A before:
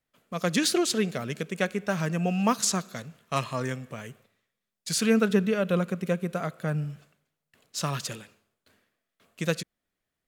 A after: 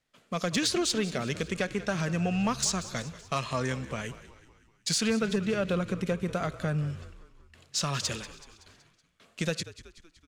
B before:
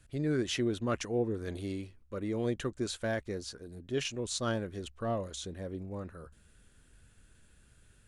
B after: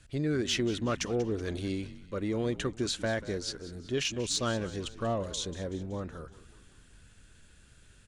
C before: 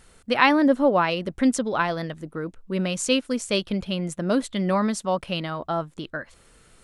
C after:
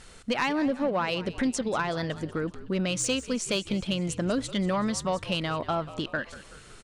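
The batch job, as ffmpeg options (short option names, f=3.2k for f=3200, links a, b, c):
-filter_complex "[0:a]lowpass=6.9k,highshelf=f=2.9k:g=6.5,acompressor=threshold=-29dB:ratio=3,asoftclip=type=tanh:threshold=-21dB,asplit=2[a][b];[b]asplit=5[c][d][e][f][g];[c]adelay=188,afreqshift=-58,volume=-16dB[h];[d]adelay=376,afreqshift=-116,volume=-21.4dB[i];[e]adelay=564,afreqshift=-174,volume=-26.7dB[j];[f]adelay=752,afreqshift=-232,volume=-32.1dB[k];[g]adelay=940,afreqshift=-290,volume=-37.4dB[l];[h][i][j][k][l]amix=inputs=5:normalize=0[m];[a][m]amix=inputs=2:normalize=0,volume=3.5dB"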